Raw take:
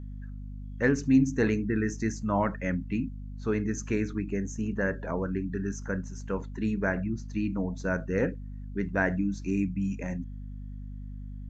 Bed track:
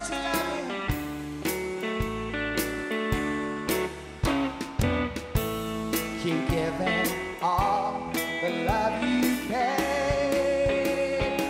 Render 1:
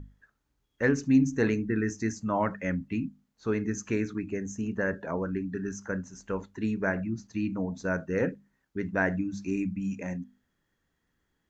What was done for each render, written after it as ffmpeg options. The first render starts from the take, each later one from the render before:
-af "bandreject=f=50:t=h:w=6,bandreject=f=100:t=h:w=6,bandreject=f=150:t=h:w=6,bandreject=f=200:t=h:w=6,bandreject=f=250:t=h:w=6"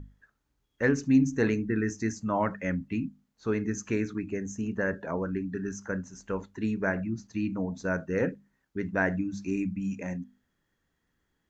-af anull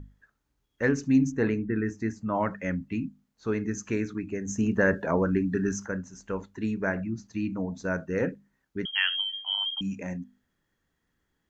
-filter_complex "[0:a]asettb=1/sr,asplit=3[a][b][c];[a]atrim=end=1.324[d];[b]atrim=start=1.32:end=2.35,asetpts=PTS-STARTPTS,afade=t=in:d=0.004:c=qsin,afade=t=out:st=1.026:d=0.004:c=qsin,equalizer=f=6.3k:t=o:w=1.5:g=-11.5[e];[c]atrim=start=2.346[f];[d][e]acrossfade=d=0.004:c1=hsin:c2=qsin[g];[g][f]acrossfade=d=0.004:c1=qsin:c2=hsin,asplit=3[h][i][j];[h]afade=t=out:st=4.47:d=0.02[k];[i]acontrast=66,afade=t=in:st=4.47:d=0.02,afade=t=out:st=5.85:d=0.02[l];[j]afade=t=in:st=5.85:d=0.02[m];[k][l][m]amix=inputs=3:normalize=0,asettb=1/sr,asplit=3[n][o][p];[n]atrim=end=8.854[q];[o]atrim=start=8.85:end=9.81,asetpts=PTS-STARTPTS,afade=t=in:d=0.004:c=qsin,afade=t=out:st=0.956:d=0.004:c=qsin,lowpass=f=2.9k:t=q:w=0.5098,lowpass=f=2.9k:t=q:w=0.6013,lowpass=f=2.9k:t=q:w=0.9,lowpass=f=2.9k:t=q:w=2.563,afreqshift=-3400[r];[p]atrim=start=9.806[s];[q][r]acrossfade=d=0.004:c1=hsin:c2=qsin[t];[t][s]acrossfade=d=0.004:c1=qsin:c2=hsin"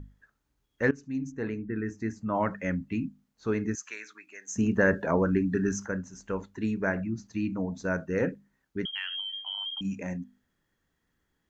-filter_complex "[0:a]asettb=1/sr,asplit=3[a][b][c];[a]atrim=end=3.754[d];[b]atrim=start=3.75:end=4.56,asetpts=PTS-STARTPTS,afade=t=in:d=0.004:c=qsin,afade=t=out:st=0.806:d=0.004:c=qsin,highpass=1.3k[e];[c]atrim=start=4.556[f];[d][e]acrossfade=d=0.004:c1=hsin:c2=qsin[g];[g][f]acrossfade=d=0.004:c1=qsin:c2=hsin,asettb=1/sr,asplit=3[h][i][j];[h]atrim=end=8.894[k];[i]atrim=start=8.89:end=9.85,asetpts=PTS-STARTPTS,afade=t=in:d=0.004:c=qsin,afade=t=out:st=0.956:d=0.004:c=qsin,acompressor=threshold=-33dB:ratio=3:attack=3.2:release=140:knee=1:detection=peak[l];[j]atrim=start=9.846[m];[k][l]acrossfade=d=0.004:c1=hsin:c2=qsin[n];[n][m]acrossfade=d=0.004:c1=qsin:c2=hsin,asplit=2[o][p];[o]atrim=end=0.91,asetpts=PTS-STARTPTS,afade=t=out:st=0.906:d=0.004:c=hsin:silence=0.133352[q];[p]atrim=start=0.91,asetpts=PTS-STARTPTS,afade=t=in:d=1.56:silence=0.133352[r];[q][r]concat=n=2:v=0:a=1"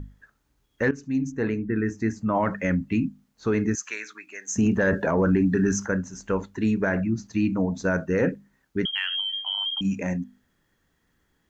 -af "acontrast=83,alimiter=limit=-13.5dB:level=0:latency=1:release=20"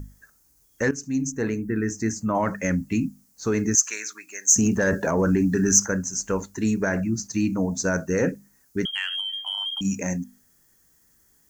-af "aexciter=amount=4.7:drive=8.2:freq=5k"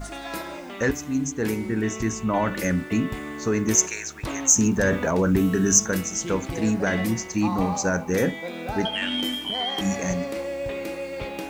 -filter_complex "[1:a]volume=-5.5dB[a];[0:a][a]amix=inputs=2:normalize=0"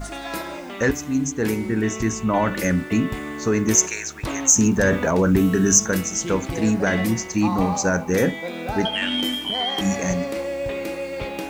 -af "volume=3dB,alimiter=limit=-3dB:level=0:latency=1"

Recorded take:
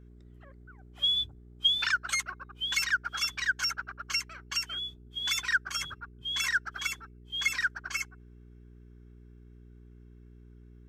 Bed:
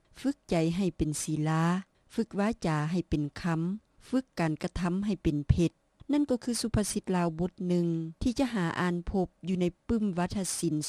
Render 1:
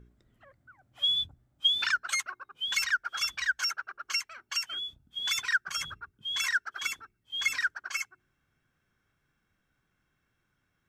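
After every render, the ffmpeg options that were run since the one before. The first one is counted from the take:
-af "bandreject=f=60:t=h:w=4,bandreject=f=120:t=h:w=4,bandreject=f=180:t=h:w=4,bandreject=f=240:t=h:w=4,bandreject=f=300:t=h:w=4,bandreject=f=360:t=h:w=4,bandreject=f=420:t=h:w=4"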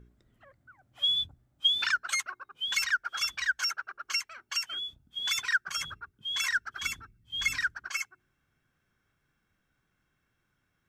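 -filter_complex "[0:a]asplit=3[a][b][c];[a]afade=t=out:st=6.52:d=0.02[d];[b]asubboost=boost=6.5:cutoff=200,afade=t=in:st=6.52:d=0.02,afade=t=out:st=7.88:d=0.02[e];[c]afade=t=in:st=7.88:d=0.02[f];[d][e][f]amix=inputs=3:normalize=0"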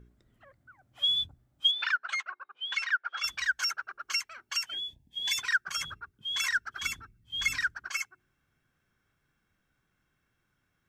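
-filter_complex "[0:a]asettb=1/sr,asplit=3[a][b][c];[a]atrim=end=1.714[d];[b]atrim=start=1.71:end=3.24,asetpts=PTS-STARTPTS,afade=t=in:d=0.004:c=qsin,afade=t=out:st=1.526:d=0.004:c=qsin,highpass=540,lowpass=3.1k[e];[c]atrim=start=3.236[f];[d][e]acrossfade=d=0.004:c1=hsin:c2=qsin[g];[g][f]acrossfade=d=0.004:c1=qsin:c2=hsin,asplit=3[h][i][j];[h]afade=t=out:st=4.7:d=0.02[k];[i]asuperstop=centerf=1300:order=20:qfactor=2.5,afade=t=in:st=4.7:d=0.02,afade=t=out:st=5.37:d=0.02[l];[j]afade=t=in:st=5.37:d=0.02[m];[k][l][m]amix=inputs=3:normalize=0"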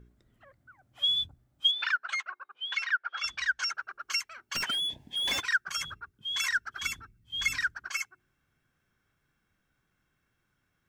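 -filter_complex "[0:a]asettb=1/sr,asplit=3[a][b][c];[a]atrim=end=2.694[d];[b]atrim=start=2.69:end=3.75,asetpts=PTS-STARTPTS,afade=t=in:d=0.004:c=qsin,afade=t=out:st=1.056:d=0.004:c=qsin,lowpass=6.3k[e];[c]atrim=start=3.746[f];[d][e]acrossfade=d=0.004:c1=hsin:c2=qsin[g];[g][f]acrossfade=d=0.004:c1=qsin:c2=hsin,asplit=3[h][i][j];[h]afade=t=out:st=4.54:d=0.02[k];[i]asplit=2[l][m];[m]highpass=f=720:p=1,volume=31dB,asoftclip=type=tanh:threshold=-17.5dB[n];[l][n]amix=inputs=2:normalize=0,lowpass=f=1.7k:p=1,volume=-6dB,afade=t=in:st=4.54:d=0.02,afade=t=out:st=5.39:d=0.02[o];[j]afade=t=in:st=5.39:d=0.02[p];[k][o][p]amix=inputs=3:normalize=0"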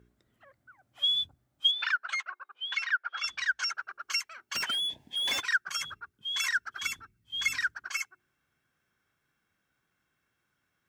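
-af "highpass=50,lowshelf=f=230:g=-8"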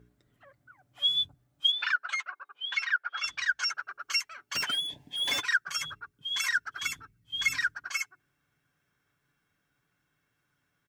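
-af "lowshelf=f=230:g=4.5,aecho=1:1:6.9:0.41"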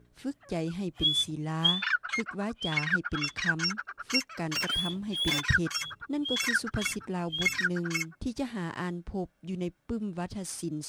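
-filter_complex "[1:a]volume=-5dB[a];[0:a][a]amix=inputs=2:normalize=0"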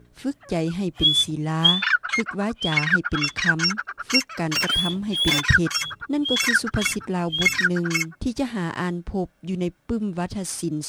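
-af "volume=8dB"

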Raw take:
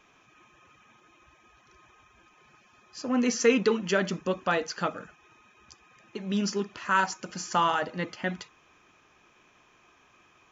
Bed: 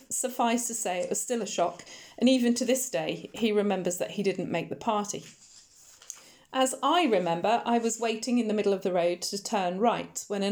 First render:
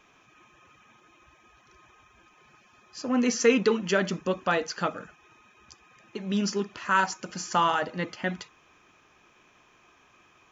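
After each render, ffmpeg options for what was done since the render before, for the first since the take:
-af "volume=1dB"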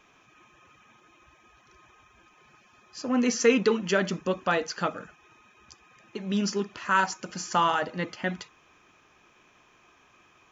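-af anull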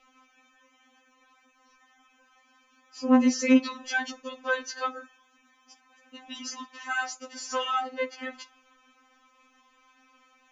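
-af "afftfilt=real='re*3.46*eq(mod(b,12),0)':imag='im*3.46*eq(mod(b,12),0)':win_size=2048:overlap=0.75"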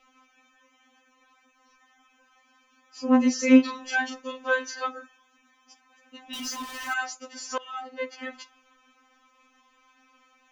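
-filter_complex "[0:a]asettb=1/sr,asplit=3[a][b][c];[a]atrim=end=3.404[d];[b]atrim=start=3.4:end=4.78,asetpts=PTS-STARTPTS,afade=t=in:d=0.004:c=qsin,afade=t=out:st=1.376:d=0.004:c=qsin,asplit=2[e][f];[f]adelay=27,volume=-3dB[g];[e][g]amix=inputs=2:normalize=0,atrim=end_sample=60858[h];[c]atrim=start=4.776[i];[d][h]acrossfade=d=0.004:c1=hsin:c2=qsin[j];[j][i]acrossfade=d=0.004:c1=qsin:c2=hsin,asettb=1/sr,asplit=3[k][l][m];[k]atrim=end=6.334[n];[l]atrim=start=6.33:end=6.94,asetpts=PTS-STARTPTS,afade=t=in:d=0.004:c=qsin,afade=t=out:st=0.606:d=0.004:c=qsin,aeval=exprs='val(0)+0.5*0.0178*sgn(val(0))':c=same[o];[m]atrim=start=6.936[p];[n][o]acrossfade=d=0.004:c1=hsin:c2=qsin[q];[q][p]acrossfade=d=0.004:c1=qsin:c2=hsin,asplit=2[r][s];[r]atrim=end=7.58,asetpts=PTS-STARTPTS,afade=t=out:st=7.576:d=0.004:c=hsin:silence=0.1[t];[s]atrim=start=7.58,asetpts=PTS-STARTPTS,afade=t=in:d=0.58:silence=0.1[u];[t][u]concat=n=2:v=0:a=1"

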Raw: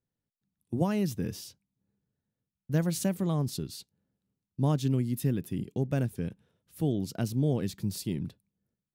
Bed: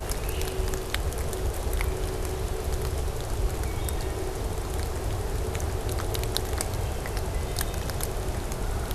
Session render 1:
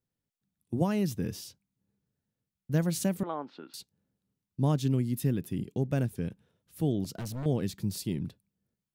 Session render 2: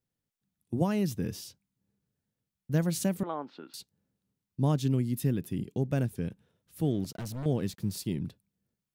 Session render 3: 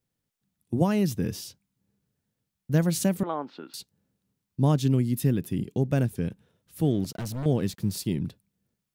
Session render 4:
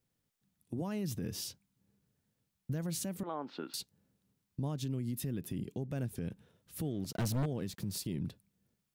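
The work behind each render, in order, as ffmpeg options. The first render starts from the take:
-filter_complex "[0:a]asettb=1/sr,asplit=3[a][b][c];[a]atrim=end=3.234[d];[b]atrim=start=3.23:end=3.74,asetpts=PTS-STARTPTS,afade=t=in:d=0.004:c=qsin,afade=t=out:st=0.506:d=0.004:c=qsin,highpass=f=310:w=0.5412,highpass=f=310:w=1.3066,equalizer=f=390:t=q:w=4:g=-8,equalizer=f=870:t=q:w=4:g=7,equalizer=f=1.4k:t=q:w=4:g=9,lowpass=f=2.7k:w=0.5412,lowpass=f=2.7k:w=1.3066[e];[c]atrim=start=3.736[f];[d][e]acrossfade=d=0.004:c1=hsin:c2=qsin[g];[g][f]acrossfade=d=0.004:c1=qsin:c2=hsin,asettb=1/sr,asplit=3[h][i][j];[h]atrim=end=7.044[k];[i]atrim=start=7.04:end=7.46,asetpts=PTS-STARTPTS,afade=t=in:d=0.004:c=qsin,afade=t=out:st=0.416:d=0.004:c=qsin,asoftclip=type=hard:threshold=-34dB[l];[j]atrim=start=7.456[m];[k][l]acrossfade=d=0.004:c1=hsin:c2=qsin[n];[n][m]acrossfade=d=0.004:c1=qsin:c2=hsin"
-filter_complex "[0:a]asettb=1/sr,asplit=3[a][b][c];[a]atrim=end=6.844[d];[b]atrim=start=6.84:end=8.06,asetpts=PTS-STARTPTS,afade=t=in:d=0.004:c=qsin,afade=t=out:st=1.216:d=0.004:c=qsin,aeval=exprs='sgn(val(0))*max(abs(val(0))-0.00126,0)':c=same[e];[c]atrim=start=8.056[f];[d][e]acrossfade=d=0.004:c1=hsin:c2=qsin[g];[g][f]acrossfade=d=0.004:c1=qsin:c2=hsin"
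-af "volume=4.5dB"
-af "acompressor=threshold=-26dB:ratio=6,alimiter=level_in=4.5dB:limit=-24dB:level=0:latency=1:release=143,volume=-4.5dB"

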